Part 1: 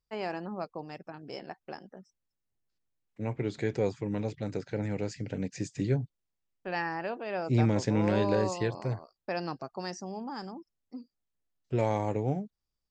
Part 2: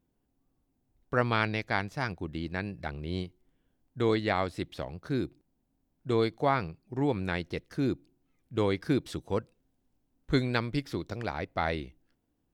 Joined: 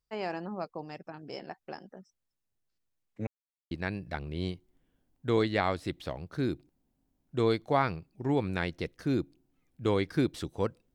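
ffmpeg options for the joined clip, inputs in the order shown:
ffmpeg -i cue0.wav -i cue1.wav -filter_complex "[0:a]apad=whole_dur=10.94,atrim=end=10.94,asplit=2[link_01][link_02];[link_01]atrim=end=3.27,asetpts=PTS-STARTPTS,afade=type=out:start_time=3.266:duration=0.004:curve=hsin[link_03];[link_02]atrim=start=3.27:end=3.71,asetpts=PTS-STARTPTS,volume=0[link_04];[1:a]atrim=start=2.43:end=9.66,asetpts=PTS-STARTPTS,afade=type=in:duration=0.004:curve=hsin[link_05];[link_03][link_04][link_05]concat=n=3:v=0:a=1" out.wav

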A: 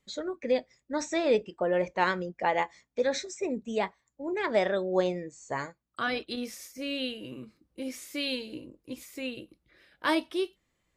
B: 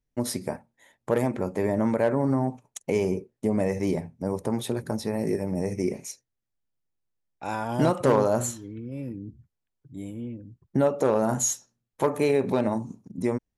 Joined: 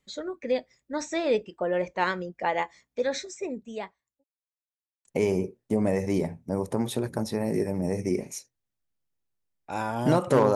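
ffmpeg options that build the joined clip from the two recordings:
ffmpeg -i cue0.wav -i cue1.wav -filter_complex "[0:a]apad=whole_dur=10.55,atrim=end=10.55,asplit=2[link_01][link_02];[link_01]atrim=end=4.24,asetpts=PTS-STARTPTS,afade=type=out:start_time=3.31:duration=0.93[link_03];[link_02]atrim=start=4.24:end=5.05,asetpts=PTS-STARTPTS,volume=0[link_04];[1:a]atrim=start=2.78:end=8.28,asetpts=PTS-STARTPTS,afade=type=in:duration=0.004:curve=hsin[link_05];[link_03][link_04][link_05]concat=n=3:v=0:a=1" out.wav

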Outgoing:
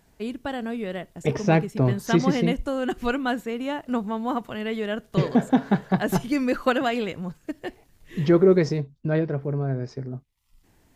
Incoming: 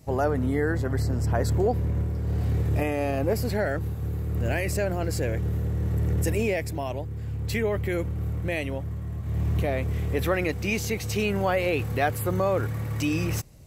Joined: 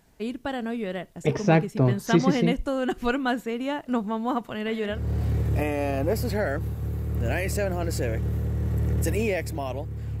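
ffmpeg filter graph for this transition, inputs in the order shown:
ffmpeg -i cue0.wav -i cue1.wav -filter_complex "[0:a]asettb=1/sr,asplit=3[link_01][link_02][link_03];[link_01]atrim=end=4.484[link_04];[link_02]atrim=start=4.48:end=5.02,asetpts=PTS-STARTPTS,afade=type=in:duration=0.004:curve=qsin,afade=type=out:start_time=0.536:duration=0.004:curve=qsin,aecho=1:1:169:0.266,atrim=end_sample=23814[link_05];[link_03]atrim=start=5.016[link_06];[link_04][link_05]acrossfade=duration=0.004:curve1=hsin:curve2=qsin[link_07];[link_07][link_06]acrossfade=duration=0.004:curve1=qsin:curve2=hsin,apad=whole_dur=10.2,atrim=end=10.2,atrim=end=5.02,asetpts=PTS-STARTPTS[link_08];[1:a]atrim=start=2.08:end=7.4,asetpts=PTS-STARTPTS[link_09];[link_08][link_09]acrossfade=duration=0.14:curve1=tri:curve2=tri" out.wav

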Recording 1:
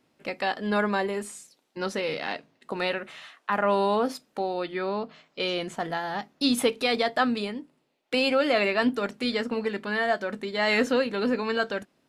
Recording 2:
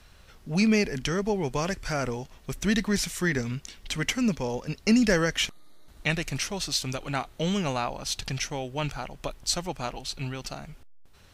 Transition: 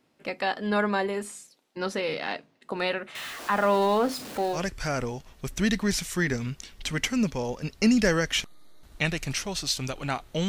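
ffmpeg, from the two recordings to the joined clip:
ffmpeg -i cue0.wav -i cue1.wav -filter_complex "[0:a]asettb=1/sr,asplit=3[link_01][link_02][link_03];[link_01]atrim=end=3.154[link_04];[link_02]atrim=start=3.15:end=4.6,asetpts=PTS-STARTPTS,afade=type=in:duration=0.004:curve=qsin,afade=type=out:start_time=1.446:duration=0.004:curve=qsin,aeval=exprs='val(0)+0.5*0.02*sgn(val(0))':channel_layout=same[link_05];[link_03]atrim=start=4.596[link_06];[link_04][link_05]acrossfade=duration=0.004:curve1=hsin:curve2=qsin[link_07];[link_07][link_06]acrossfade=duration=0.004:curve1=qsin:curve2=hsin,apad=whole_dur=10.48,atrim=end=10.48,atrim=end=4.6,asetpts=PTS-STARTPTS[link_08];[1:a]atrim=start=1.57:end=7.53,asetpts=PTS-STARTPTS[link_09];[link_08][link_09]acrossfade=duration=0.08:curve1=tri:curve2=tri" out.wav

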